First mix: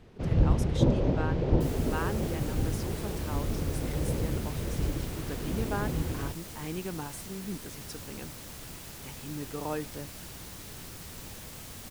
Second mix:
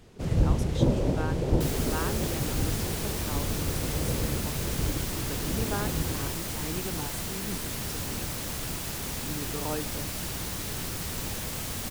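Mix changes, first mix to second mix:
first sound: remove distance through air 190 m; second sound +10.0 dB

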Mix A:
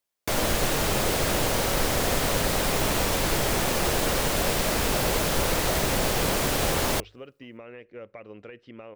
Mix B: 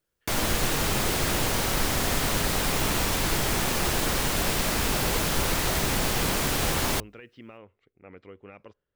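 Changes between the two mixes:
speech: entry -1.30 s; master: add peaking EQ 550 Hz -6 dB 0.8 oct

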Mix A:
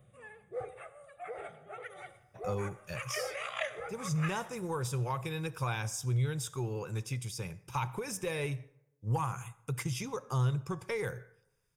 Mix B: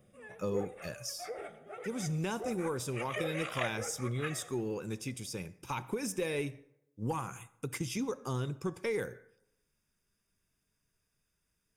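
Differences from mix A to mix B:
speech: entry -2.05 s; master: add ten-band graphic EQ 125 Hz -10 dB, 250 Hz +11 dB, 1 kHz -4 dB

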